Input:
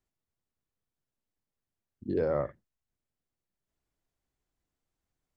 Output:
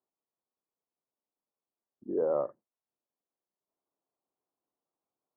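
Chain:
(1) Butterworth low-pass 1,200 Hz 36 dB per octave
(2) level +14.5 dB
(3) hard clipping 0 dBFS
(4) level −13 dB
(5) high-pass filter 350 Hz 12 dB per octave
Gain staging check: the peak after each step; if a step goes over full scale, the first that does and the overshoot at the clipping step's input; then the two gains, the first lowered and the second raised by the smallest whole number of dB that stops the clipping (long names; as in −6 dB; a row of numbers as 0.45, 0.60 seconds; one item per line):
−18.0, −3.5, −3.5, −16.5, −18.0 dBFS
no step passes full scale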